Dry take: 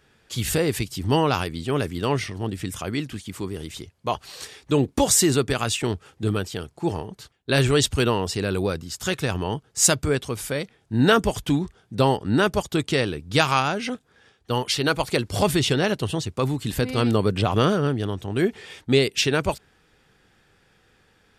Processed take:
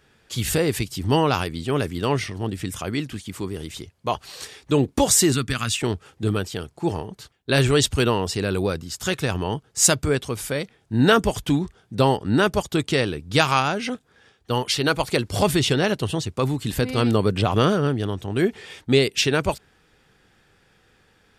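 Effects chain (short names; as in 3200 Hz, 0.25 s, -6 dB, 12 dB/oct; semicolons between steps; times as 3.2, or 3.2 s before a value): 5.32–5.74 band shelf 560 Hz -11 dB; gain +1 dB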